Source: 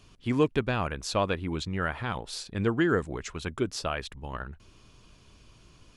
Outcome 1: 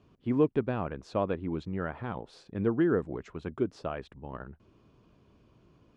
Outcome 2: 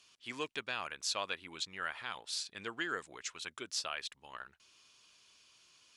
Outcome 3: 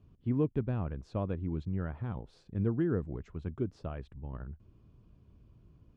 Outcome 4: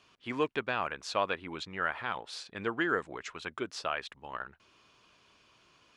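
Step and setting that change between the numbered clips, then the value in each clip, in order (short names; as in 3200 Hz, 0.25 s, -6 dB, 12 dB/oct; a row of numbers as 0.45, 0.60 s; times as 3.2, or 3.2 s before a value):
band-pass, frequency: 310, 5600, 100, 1600 Hz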